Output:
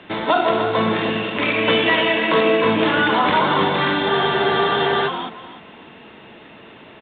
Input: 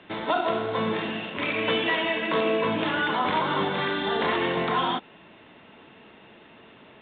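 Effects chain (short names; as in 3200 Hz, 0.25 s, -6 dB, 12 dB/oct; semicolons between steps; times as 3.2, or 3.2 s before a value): feedback echo 0.302 s, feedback 23%, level -8.5 dB; spectral freeze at 4.12, 0.96 s; gain +7.5 dB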